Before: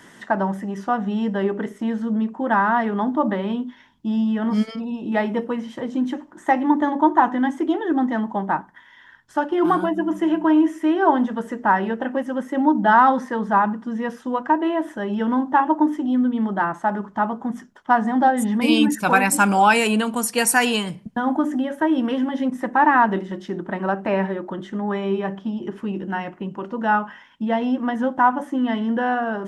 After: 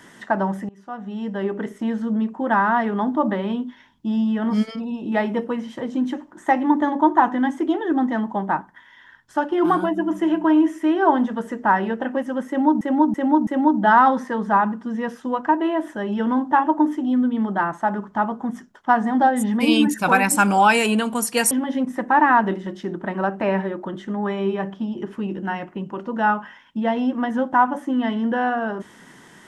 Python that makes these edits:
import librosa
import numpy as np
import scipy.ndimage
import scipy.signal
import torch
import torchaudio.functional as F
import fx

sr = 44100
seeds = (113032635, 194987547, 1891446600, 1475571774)

y = fx.edit(x, sr, fx.fade_in_from(start_s=0.69, length_s=1.06, floor_db=-24.0),
    fx.repeat(start_s=12.48, length_s=0.33, count=4),
    fx.cut(start_s=20.52, length_s=1.64), tone=tone)